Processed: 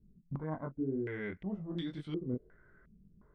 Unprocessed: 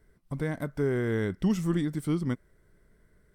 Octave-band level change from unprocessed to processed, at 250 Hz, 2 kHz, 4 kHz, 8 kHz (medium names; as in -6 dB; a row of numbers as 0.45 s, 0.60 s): -9.0 dB, -8.5 dB, -5.5 dB, under -25 dB